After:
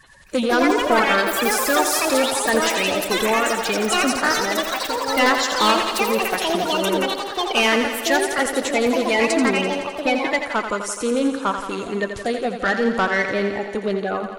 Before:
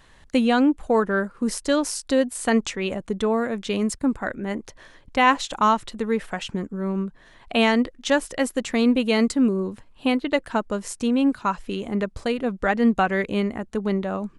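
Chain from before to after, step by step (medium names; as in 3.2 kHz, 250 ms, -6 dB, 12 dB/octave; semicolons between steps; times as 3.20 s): coarse spectral quantiser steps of 30 dB; bass shelf 310 Hz -10.5 dB; saturation -19.5 dBFS, distortion -12 dB; ever faster or slower copies 263 ms, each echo +6 st, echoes 3; on a send: thinning echo 85 ms, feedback 72%, high-pass 180 Hz, level -8 dB; on the sum: trim +6.5 dB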